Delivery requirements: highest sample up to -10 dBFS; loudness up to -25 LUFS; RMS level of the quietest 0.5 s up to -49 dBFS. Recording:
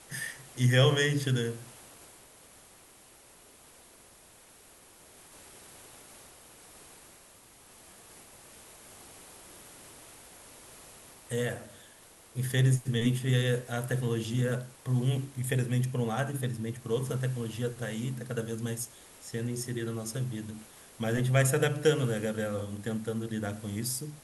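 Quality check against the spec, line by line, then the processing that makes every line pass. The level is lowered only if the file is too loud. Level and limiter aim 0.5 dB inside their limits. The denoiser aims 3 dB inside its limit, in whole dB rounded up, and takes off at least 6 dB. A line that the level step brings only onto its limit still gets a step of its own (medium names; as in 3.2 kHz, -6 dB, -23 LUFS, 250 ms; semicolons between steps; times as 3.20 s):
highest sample -11.0 dBFS: pass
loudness -30.5 LUFS: pass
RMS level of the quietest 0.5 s -56 dBFS: pass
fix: none needed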